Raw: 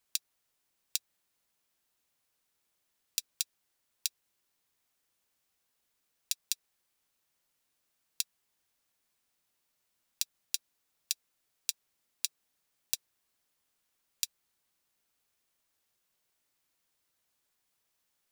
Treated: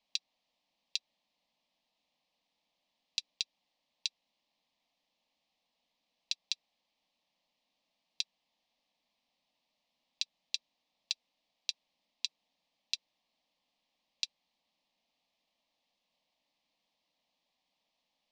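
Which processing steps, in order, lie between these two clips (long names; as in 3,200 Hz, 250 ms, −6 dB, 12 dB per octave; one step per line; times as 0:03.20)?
low-pass filter 4,400 Hz 24 dB per octave
low-shelf EQ 110 Hz −9.5 dB
phaser with its sweep stopped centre 390 Hz, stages 6
level +6.5 dB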